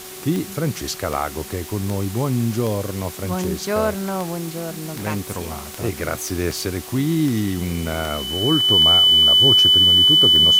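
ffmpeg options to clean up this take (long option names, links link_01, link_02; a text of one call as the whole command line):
ffmpeg -i in.wav -af "adeclick=threshold=4,bandreject=frequency=372.9:width_type=h:width=4,bandreject=frequency=745.8:width_type=h:width=4,bandreject=frequency=1118.7:width_type=h:width=4,bandreject=frequency=3000:width=30,afwtdn=0.016" out.wav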